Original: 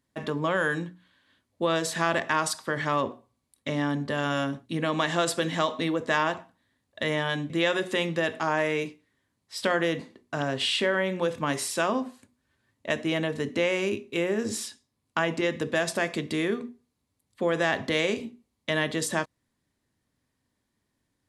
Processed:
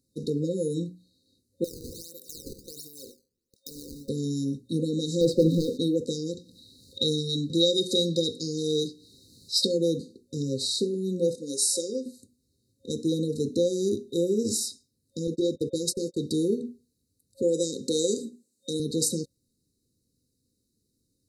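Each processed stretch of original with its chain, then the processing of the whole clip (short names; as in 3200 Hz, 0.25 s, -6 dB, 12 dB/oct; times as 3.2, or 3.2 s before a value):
1.64–4.09 HPF 1400 Hz 6 dB/oct + compressor, threshold -36 dBFS + decimation with a swept rate 14×, swing 160% 1.4 Hz
5.21–5.78 LPF 2000 Hz + sample leveller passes 2
6.37–9.78 bell 3800 Hz +11.5 dB 1.2 oct + upward compressor, threshold -40 dBFS
11.35–12.06 HPF 390 Hz + high shelf 6900 Hz +4.5 dB + careless resampling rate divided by 2×, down none, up filtered
15.27–16.21 gate -35 dBFS, range -33 dB + comb 2.6 ms, depth 31% + core saturation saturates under 870 Hz
17.42–18.8 HPF 220 Hz + bell 7800 Hz +10.5 dB 0.55 oct
whole clip: high shelf 4200 Hz +4 dB; FFT band-reject 540–3700 Hz; gain +2.5 dB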